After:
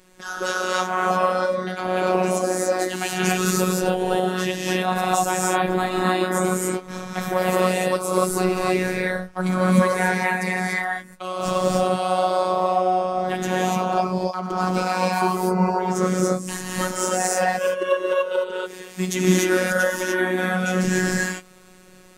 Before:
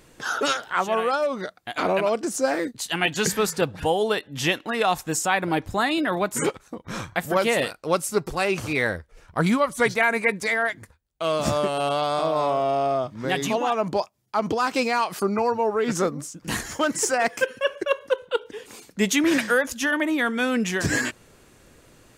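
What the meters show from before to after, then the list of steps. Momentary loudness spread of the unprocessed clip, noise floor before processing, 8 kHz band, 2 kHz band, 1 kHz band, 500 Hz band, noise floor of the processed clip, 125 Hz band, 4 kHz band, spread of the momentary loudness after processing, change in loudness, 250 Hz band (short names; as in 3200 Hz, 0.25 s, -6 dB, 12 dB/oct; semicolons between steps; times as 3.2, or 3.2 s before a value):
8 LU, -56 dBFS, +2.5 dB, 0.0 dB, +3.5 dB, +2.0 dB, -46 dBFS, +6.5 dB, -1.0 dB, 6 LU, +2.0 dB, +3.0 dB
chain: dynamic EQ 2600 Hz, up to -6 dB, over -38 dBFS, Q 0.7; non-linear reverb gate 0.32 s rising, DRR -5 dB; robotiser 184 Hz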